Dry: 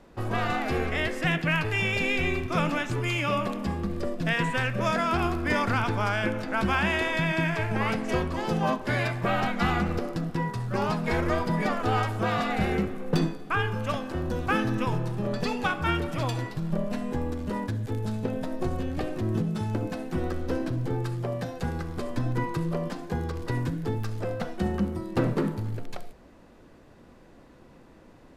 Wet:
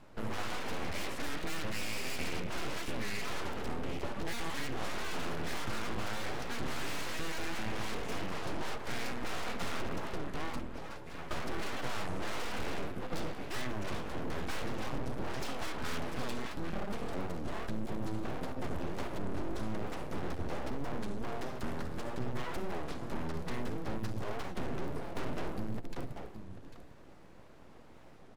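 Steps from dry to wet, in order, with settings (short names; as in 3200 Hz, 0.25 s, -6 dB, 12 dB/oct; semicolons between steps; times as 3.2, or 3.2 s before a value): 10.59–11.31 metallic resonator 130 Hz, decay 0.4 s, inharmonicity 0.008; on a send: echo 0.796 s -14 dB; on the sum: tube stage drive 29 dB, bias 0.35; low shelf 180 Hz +4.5 dB; full-wave rectifier; record warp 33 1/3 rpm, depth 250 cents; gain -1.5 dB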